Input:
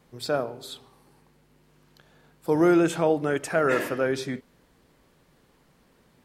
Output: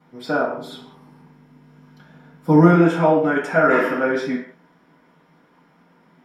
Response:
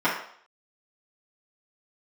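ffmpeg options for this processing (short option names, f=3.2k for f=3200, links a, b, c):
-filter_complex "[0:a]asettb=1/sr,asplit=3[a][b][c];[a]atrim=end=0.574[d];[b]atrim=start=0.57:end=2.73,asetpts=PTS-STARTPTS,afade=t=in:d=0.004:c=qsin,afade=t=out:st=2.156:d=0.004:c=qsin,bass=f=250:g=11,treble=f=4k:g=4[e];[c]atrim=start=2.726[f];[d][e]acrossfade=d=0.004:c1=hsin:c2=qsin[g];[g][f]acrossfade=d=0.004:c1=qsin:c2=hsin[h];[1:a]atrim=start_sample=2205,afade=t=out:st=0.26:d=0.01,atrim=end_sample=11907[i];[h][i]afir=irnorm=-1:irlink=0,volume=-9.5dB"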